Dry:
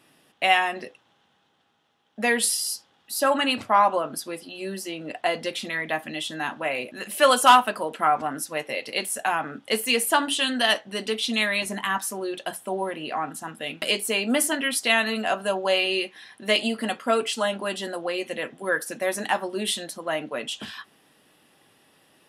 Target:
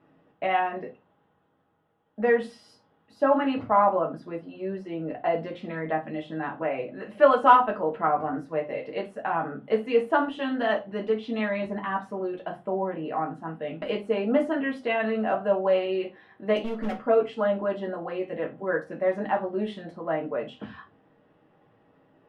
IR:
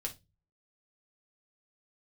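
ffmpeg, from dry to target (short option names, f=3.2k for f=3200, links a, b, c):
-filter_complex "[0:a]lowpass=1.1k,asettb=1/sr,asplit=3[a][b][c];[a]atrim=end=16.564[d];[b]atrim=start=16.56:end=17.06,asetpts=PTS-STARTPTS,afade=t=in:d=0.004:c=qsin,afade=t=out:st=0.496:d=0.004:c=qsin,volume=26.5dB,asoftclip=hard,volume=-26.5dB[e];[c]atrim=start=17.056[f];[d][e]acrossfade=d=0.004:c1=hsin:c2=qsin[g];[g][f]acrossfade=d=0.004:c1=qsin:c2=hsin[h];[1:a]atrim=start_sample=2205[i];[h][i]afir=irnorm=-1:irlink=0,volume=1.5dB"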